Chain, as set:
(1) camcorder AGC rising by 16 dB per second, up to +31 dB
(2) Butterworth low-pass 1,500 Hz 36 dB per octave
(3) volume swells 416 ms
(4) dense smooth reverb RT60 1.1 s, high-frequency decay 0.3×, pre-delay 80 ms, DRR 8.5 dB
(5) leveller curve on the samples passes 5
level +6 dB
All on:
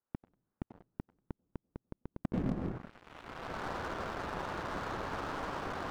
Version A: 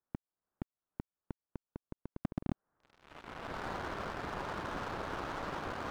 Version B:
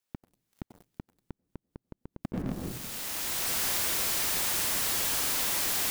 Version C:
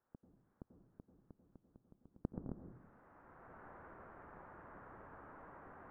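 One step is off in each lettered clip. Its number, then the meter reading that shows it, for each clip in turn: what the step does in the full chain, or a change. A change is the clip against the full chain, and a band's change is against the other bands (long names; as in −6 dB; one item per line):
4, change in momentary loudness spread −3 LU
2, 8 kHz band +30.5 dB
5, change in crest factor +14.5 dB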